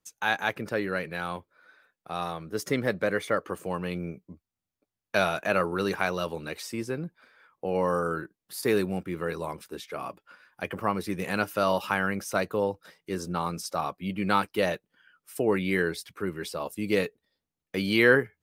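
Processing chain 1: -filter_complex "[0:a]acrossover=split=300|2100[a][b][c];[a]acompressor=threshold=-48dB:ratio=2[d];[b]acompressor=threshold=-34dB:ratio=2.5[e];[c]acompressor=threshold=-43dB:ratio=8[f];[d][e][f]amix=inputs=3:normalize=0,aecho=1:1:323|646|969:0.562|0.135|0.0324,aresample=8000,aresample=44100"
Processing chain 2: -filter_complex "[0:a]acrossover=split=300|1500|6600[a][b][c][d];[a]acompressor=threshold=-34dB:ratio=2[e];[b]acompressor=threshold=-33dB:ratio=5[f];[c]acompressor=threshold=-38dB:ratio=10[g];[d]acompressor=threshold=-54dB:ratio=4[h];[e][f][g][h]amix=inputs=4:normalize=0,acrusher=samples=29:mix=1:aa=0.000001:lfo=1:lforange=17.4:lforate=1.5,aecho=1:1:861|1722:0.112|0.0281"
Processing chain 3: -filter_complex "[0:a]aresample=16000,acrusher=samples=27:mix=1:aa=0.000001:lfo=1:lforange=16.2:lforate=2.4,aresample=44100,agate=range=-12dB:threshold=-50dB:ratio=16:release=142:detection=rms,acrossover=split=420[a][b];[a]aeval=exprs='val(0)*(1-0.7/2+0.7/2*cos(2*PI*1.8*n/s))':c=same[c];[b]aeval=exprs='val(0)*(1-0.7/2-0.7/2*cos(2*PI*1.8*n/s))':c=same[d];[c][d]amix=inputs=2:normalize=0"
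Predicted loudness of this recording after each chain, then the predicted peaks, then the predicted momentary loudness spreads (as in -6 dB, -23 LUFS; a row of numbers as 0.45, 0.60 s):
-35.0, -34.5, -34.5 LUFS; -16.0, -17.5, -9.5 dBFS; 8, 13, 12 LU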